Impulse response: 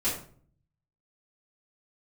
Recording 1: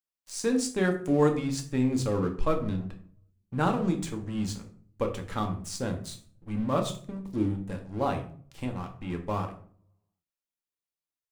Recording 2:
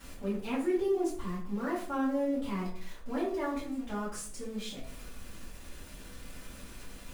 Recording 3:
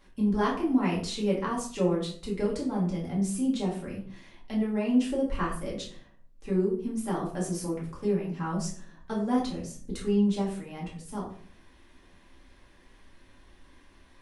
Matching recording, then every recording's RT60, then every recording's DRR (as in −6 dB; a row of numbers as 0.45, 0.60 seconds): 2; 0.50, 0.50, 0.50 seconds; 3.5, −12.5, −5.0 decibels